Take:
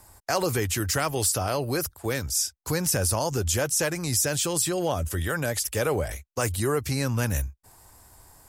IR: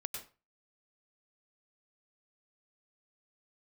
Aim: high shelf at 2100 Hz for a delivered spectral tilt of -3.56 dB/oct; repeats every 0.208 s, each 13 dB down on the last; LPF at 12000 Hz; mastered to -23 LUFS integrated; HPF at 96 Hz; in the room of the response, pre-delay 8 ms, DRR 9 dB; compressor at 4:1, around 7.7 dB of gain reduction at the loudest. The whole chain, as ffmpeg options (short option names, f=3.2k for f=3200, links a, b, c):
-filter_complex "[0:a]highpass=96,lowpass=12k,highshelf=f=2.1k:g=5,acompressor=threshold=-26dB:ratio=4,aecho=1:1:208|416|624:0.224|0.0493|0.0108,asplit=2[a][b];[1:a]atrim=start_sample=2205,adelay=8[c];[b][c]afir=irnorm=-1:irlink=0,volume=-8.5dB[d];[a][d]amix=inputs=2:normalize=0,volume=5dB"